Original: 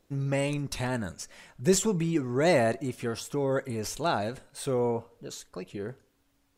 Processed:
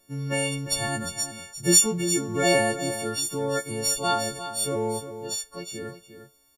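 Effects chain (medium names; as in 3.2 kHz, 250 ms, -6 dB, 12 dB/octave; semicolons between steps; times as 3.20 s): partials quantised in pitch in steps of 4 st; delay 352 ms -11 dB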